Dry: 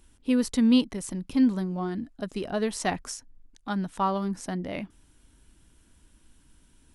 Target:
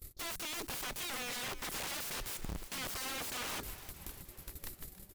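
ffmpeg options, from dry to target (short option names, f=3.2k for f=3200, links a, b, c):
-filter_complex "[0:a]agate=range=-24dB:threshold=-55dB:ratio=16:detection=peak,bass=f=250:g=3,treble=f=4k:g=14,acompressor=threshold=-31dB:ratio=5,alimiter=level_in=6.5dB:limit=-24dB:level=0:latency=1:release=30,volume=-6.5dB,aeval=exprs='(mod(141*val(0)+1,2)-1)/141':c=same,asplit=7[a][b][c][d][e][f][g];[b]adelay=419,afreqshift=-150,volume=-14dB[h];[c]adelay=838,afreqshift=-300,volume=-18.4dB[i];[d]adelay=1257,afreqshift=-450,volume=-22.9dB[j];[e]adelay=1676,afreqshift=-600,volume=-27.3dB[k];[f]adelay=2095,afreqshift=-750,volume=-31.7dB[l];[g]adelay=2514,afreqshift=-900,volume=-36.2dB[m];[a][h][i][j][k][l][m]amix=inputs=7:normalize=0,asetrate=59535,aresample=44100,volume=8dB"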